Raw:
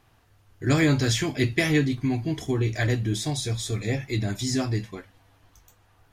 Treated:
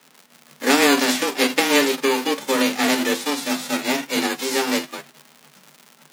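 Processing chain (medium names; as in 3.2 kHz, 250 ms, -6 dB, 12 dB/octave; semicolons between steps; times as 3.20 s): formants flattened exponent 0.3; low-pass 3 kHz 6 dB/octave; crackle 170 per s -38 dBFS; frequency shift +140 Hz; trim +6.5 dB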